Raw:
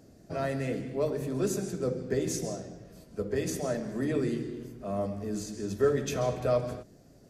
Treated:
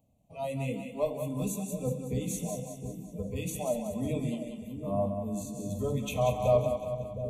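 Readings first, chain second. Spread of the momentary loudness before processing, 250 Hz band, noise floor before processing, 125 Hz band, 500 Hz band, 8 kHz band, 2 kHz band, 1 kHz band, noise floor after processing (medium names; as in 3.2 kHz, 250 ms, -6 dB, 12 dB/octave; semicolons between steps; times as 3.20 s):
11 LU, -1.0 dB, -56 dBFS, +1.5 dB, -1.0 dB, -1.0 dB, -5.0 dB, +2.5 dB, -49 dBFS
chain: static phaser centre 1.4 kHz, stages 6; spectral noise reduction 16 dB; Butterworth band-stop 1.7 kHz, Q 1.4; two-band feedback delay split 520 Hz, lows 712 ms, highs 186 ms, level -7 dB; trim +5 dB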